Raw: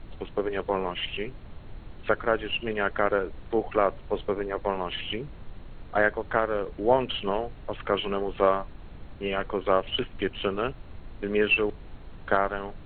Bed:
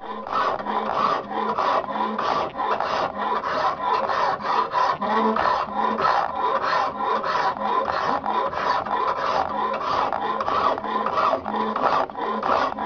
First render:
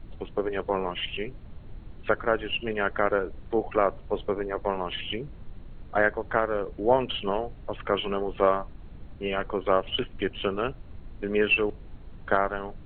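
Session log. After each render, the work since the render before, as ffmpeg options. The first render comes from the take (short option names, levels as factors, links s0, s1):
-af "afftdn=nr=6:nf=-45"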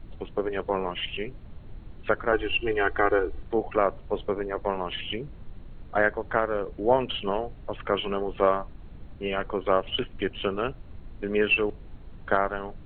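-filter_complex "[0:a]asettb=1/sr,asplit=3[s0][s1][s2];[s0]atrim=end=2.324[s3];[s1]atrim=start=2.32:end=3.43,asetpts=PTS-STARTPTS,afade=t=in:d=0.004:c=qsin,afade=t=out:st=1.106:d=0.004:c=qsin,aecho=1:1:2.6:0.92,atrim=end_sample=48951[s4];[s2]atrim=start=3.426[s5];[s3][s4]acrossfade=d=0.004:c1=hsin:c2=qsin[s6];[s6][s5]acrossfade=d=0.004:c1=qsin:c2=hsin"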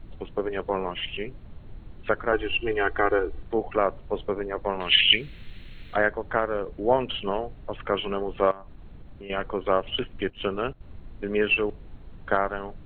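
-filter_complex "[0:a]asettb=1/sr,asplit=3[s0][s1][s2];[s0]atrim=end=4.804[s3];[s1]atrim=start=4.8:end=5.96,asetpts=PTS-STARTPTS,afade=t=in:d=0.004:c=qsin,afade=t=out:st=1.156:d=0.004:c=qsin,highshelf=f=1500:t=q:w=1.5:g=14[s4];[s2]atrim=start=5.956[s5];[s3][s4]acrossfade=d=0.004:c1=hsin:c2=qsin[s6];[s6][s5]acrossfade=d=0.004:c1=qsin:c2=hsin,asettb=1/sr,asplit=3[s7][s8][s9];[s7]atrim=end=8.514[s10];[s8]atrim=start=8.51:end=9.3,asetpts=PTS-STARTPTS,afade=t=in:d=0.004:c=qsin,afade=t=out:st=0.786:d=0.004:c=qsin,acompressor=threshold=0.0126:ratio=4:attack=3.2:release=140:knee=1:detection=peak[s11];[s9]atrim=start=9.296[s12];[s10][s11]acrossfade=d=0.004:c1=hsin:c2=qsin[s13];[s13][s12]acrossfade=d=0.004:c1=qsin:c2=hsin,asettb=1/sr,asplit=3[s14][s15][s16];[s14]atrim=end=10.304[s17];[s15]atrim=start=10.3:end=10.81,asetpts=PTS-STARTPTS,afade=t=in:d=0.004:c=qsin,afade=t=out:st=0.506:d=0.004:c=qsin,agate=range=0.282:threshold=0.0141:ratio=16:release=100:detection=peak[s18];[s16]atrim=start=10.806[s19];[s17][s18]acrossfade=d=0.004:c1=hsin:c2=qsin[s20];[s20][s19]acrossfade=d=0.004:c1=qsin:c2=hsin"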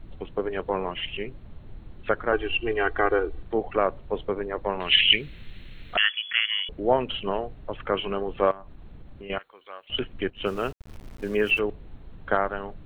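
-filter_complex "[0:a]asettb=1/sr,asplit=3[s0][s1][s2];[s0]atrim=end=5.974[s3];[s1]atrim=start=5.97:end=6.69,asetpts=PTS-STARTPTS,afade=t=in:d=0.004:c=qsin,afade=t=out:st=0.716:d=0.004:c=qsin,lowpass=f=2900:t=q:w=0.5098,lowpass=f=2900:t=q:w=0.6013,lowpass=f=2900:t=q:w=0.9,lowpass=f=2900:t=q:w=2.563,afreqshift=-3400[s4];[s2]atrim=start=6.686[s5];[s3][s4]acrossfade=d=0.004:c1=hsin:c2=qsin[s6];[s6][s5]acrossfade=d=0.004:c1=qsin:c2=hsin,asettb=1/sr,asplit=3[s7][s8][s9];[s7]atrim=end=9.384[s10];[s8]atrim=start=9.38:end=9.9,asetpts=PTS-STARTPTS,afade=t=in:d=0.004:c=qsin,afade=t=out:st=0.516:d=0.004:c=qsin,aderivative[s11];[s9]atrim=start=9.896[s12];[s10][s11]acrossfade=d=0.004:c1=hsin:c2=qsin[s13];[s13][s12]acrossfade=d=0.004:c1=qsin:c2=hsin,asplit=3[s14][s15][s16];[s14]afade=t=out:st=10.45:d=0.02[s17];[s15]aeval=exprs='val(0)*gte(abs(val(0)),0.00794)':c=same,afade=t=in:st=10.45:d=0.02,afade=t=out:st=11.58:d=0.02[s18];[s16]afade=t=in:st=11.58:d=0.02[s19];[s17][s18][s19]amix=inputs=3:normalize=0"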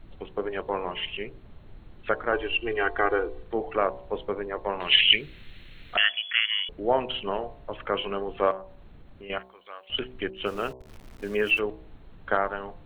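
-af "lowshelf=f=330:g=-5,bandreject=f=63.39:t=h:w=4,bandreject=f=126.78:t=h:w=4,bandreject=f=190.17:t=h:w=4,bandreject=f=253.56:t=h:w=4,bandreject=f=316.95:t=h:w=4,bandreject=f=380.34:t=h:w=4,bandreject=f=443.73:t=h:w=4,bandreject=f=507.12:t=h:w=4,bandreject=f=570.51:t=h:w=4,bandreject=f=633.9:t=h:w=4,bandreject=f=697.29:t=h:w=4,bandreject=f=760.68:t=h:w=4,bandreject=f=824.07:t=h:w=4,bandreject=f=887.46:t=h:w=4,bandreject=f=950.85:t=h:w=4,bandreject=f=1014.24:t=h:w=4,bandreject=f=1077.63:t=h:w=4"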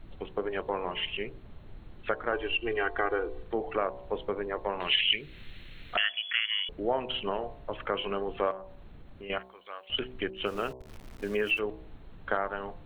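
-af "acompressor=threshold=0.0398:ratio=2"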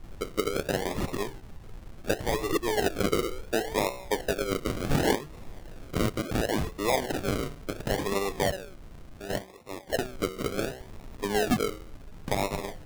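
-filter_complex "[0:a]asplit=2[s0][s1];[s1]aeval=exprs='(mod(8.91*val(0)+1,2)-1)/8.91':c=same,volume=0.473[s2];[s0][s2]amix=inputs=2:normalize=0,acrusher=samples=40:mix=1:aa=0.000001:lfo=1:lforange=24:lforate=0.7"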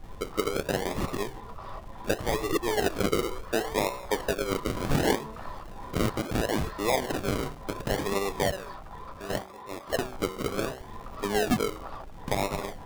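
-filter_complex "[1:a]volume=0.0841[s0];[0:a][s0]amix=inputs=2:normalize=0"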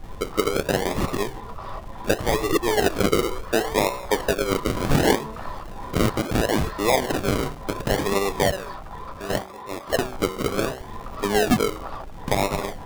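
-af "volume=2"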